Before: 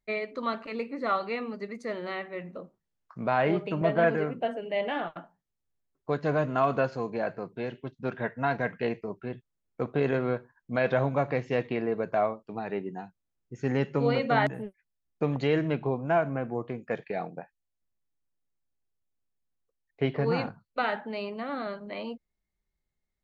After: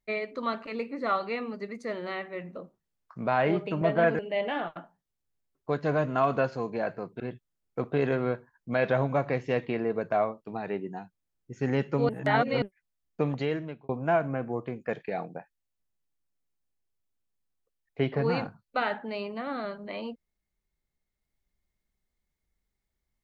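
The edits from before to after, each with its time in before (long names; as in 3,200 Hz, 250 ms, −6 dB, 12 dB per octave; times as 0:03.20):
0:04.19–0:04.59: remove
0:07.60–0:09.22: remove
0:14.11–0:14.64: reverse
0:15.26–0:15.91: fade out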